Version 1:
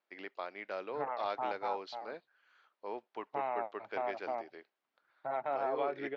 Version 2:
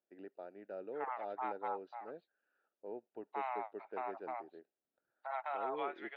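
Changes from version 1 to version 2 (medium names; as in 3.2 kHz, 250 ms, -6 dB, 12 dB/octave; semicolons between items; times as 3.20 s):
first voice: add boxcar filter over 41 samples; second voice: add high-pass 800 Hz 24 dB/octave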